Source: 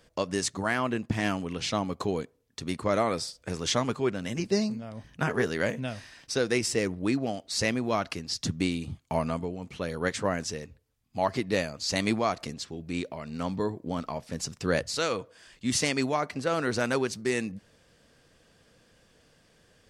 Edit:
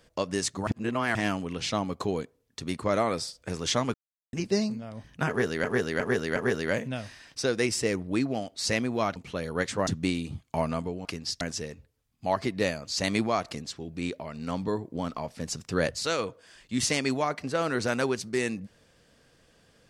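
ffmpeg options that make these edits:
ffmpeg -i in.wav -filter_complex "[0:a]asplit=12[link_01][link_02][link_03][link_04][link_05][link_06][link_07][link_08][link_09][link_10][link_11][link_12];[link_01]atrim=end=0.672[link_13];[link_02]atrim=start=0.668:end=1.152,asetpts=PTS-STARTPTS,areverse[link_14];[link_03]atrim=start=1.148:end=3.94,asetpts=PTS-STARTPTS,afade=type=out:start_time=2.788:duration=0.004:curve=hsin[link_15];[link_04]atrim=start=3.94:end=4.33,asetpts=PTS-STARTPTS,volume=0[link_16];[link_05]atrim=start=4.33:end=5.642,asetpts=PTS-STARTPTS,afade=type=in:duration=0.004:curve=hsin[link_17];[link_06]atrim=start=5.278:end=5.642[link_18];[link_07]atrim=start=5.278:end=5.642[link_19];[link_08]atrim=start=5.278:end=8.082[link_20];[link_09]atrim=start=9.618:end=10.332[link_21];[link_10]atrim=start=8.438:end=9.622[link_22];[link_11]atrim=start=8.078:end=8.442[link_23];[link_12]atrim=start=10.328[link_24];[link_13][link_14]acrossfade=duration=0.004:curve1=hsin:curve2=hsin[link_25];[link_15][link_16][link_17]concat=n=3:v=0:a=1[link_26];[link_25][link_26]acrossfade=duration=0.004:curve1=hsin:curve2=hsin[link_27];[link_27][link_18]acrossfade=duration=0.004:curve1=hsin:curve2=hsin[link_28];[link_28][link_19]acrossfade=duration=0.004:curve1=hsin:curve2=hsin[link_29];[link_29][link_20]acrossfade=duration=0.004:curve1=hsin:curve2=hsin[link_30];[link_30][link_21]acrossfade=duration=0.004:curve1=hsin:curve2=hsin[link_31];[link_31][link_22]acrossfade=duration=0.004:curve1=hsin:curve2=hsin[link_32];[link_32][link_23]acrossfade=duration=0.004:curve1=hsin:curve2=hsin[link_33];[link_33][link_24]acrossfade=duration=0.004:curve1=hsin:curve2=hsin" out.wav

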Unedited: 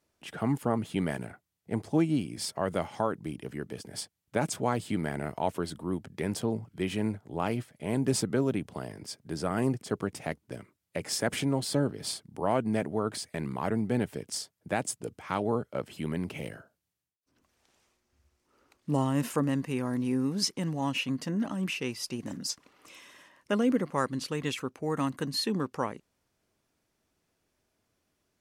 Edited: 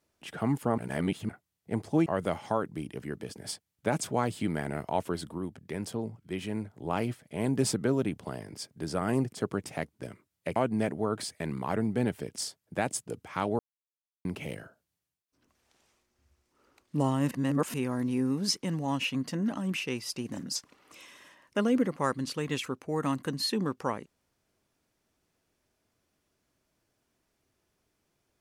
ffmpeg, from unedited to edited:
ffmpeg -i in.wav -filter_complex "[0:a]asplit=11[link_01][link_02][link_03][link_04][link_05][link_06][link_07][link_08][link_09][link_10][link_11];[link_01]atrim=end=0.782[link_12];[link_02]atrim=start=0.778:end=1.292,asetpts=PTS-STARTPTS,areverse[link_13];[link_03]atrim=start=1.288:end=2.062[link_14];[link_04]atrim=start=2.548:end=5.872[link_15];[link_05]atrim=start=5.868:end=7.192,asetpts=PTS-STARTPTS,volume=-4dB[link_16];[link_06]atrim=start=7.188:end=11.052[link_17];[link_07]atrim=start=12.498:end=15.53,asetpts=PTS-STARTPTS,afade=type=out:start_time=3.028:duration=0.004:curve=hsin[link_18];[link_08]atrim=start=15.53:end=16.19,asetpts=PTS-STARTPTS,volume=0[link_19];[link_09]atrim=start=16.19:end=19.252,asetpts=PTS-STARTPTS,afade=type=in:duration=0.004:curve=hsin[link_20];[link_10]atrim=start=19.248:end=19.682,asetpts=PTS-STARTPTS,areverse[link_21];[link_11]atrim=start=19.678[link_22];[link_12][link_13]acrossfade=duration=0.004:curve1=hsin:curve2=hsin[link_23];[link_23][link_14]acrossfade=duration=0.004:curve1=hsin:curve2=hsin[link_24];[link_24][link_15]acrossfade=duration=0.004:curve1=hsin:curve2=hsin[link_25];[link_25][link_16]acrossfade=duration=0.004:curve1=hsin:curve2=hsin[link_26];[link_26][link_17]acrossfade=duration=0.004:curve1=hsin:curve2=hsin[link_27];[link_18][link_19][link_20]concat=n=3:v=0:a=1[link_28];[link_27][link_28]acrossfade=duration=0.004:curve1=hsin:curve2=hsin[link_29];[link_29][link_21]acrossfade=duration=0.004:curve1=hsin:curve2=hsin[link_30];[link_30][link_22]acrossfade=duration=0.004:curve1=hsin:curve2=hsin" out.wav

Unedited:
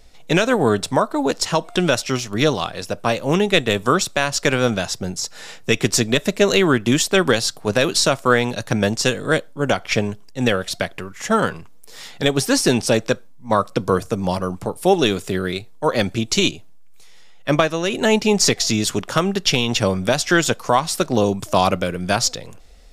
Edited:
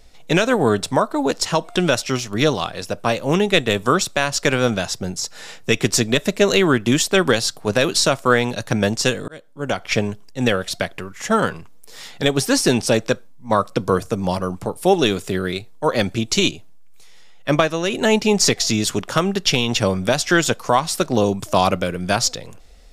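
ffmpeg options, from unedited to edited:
ffmpeg -i in.wav -filter_complex "[0:a]asplit=2[link_01][link_02];[link_01]atrim=end=9.28,asetpts=PTS-STARTPTS,afade=type=out:start_time=9.276:duration=0.004:curve=hsin[link_03];[link_02]atrim=start=9.28,asetpts=PTS-STARTPTS,afade=type=in:duration=0.66[link_04];[link_03][link_04]concat=n=2:v=0:a=1" out.wav

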